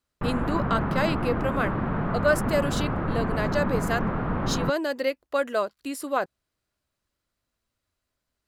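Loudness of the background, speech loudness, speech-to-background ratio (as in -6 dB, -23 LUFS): -28.0 LUFS, -28.5 LUFS, -0.5 dB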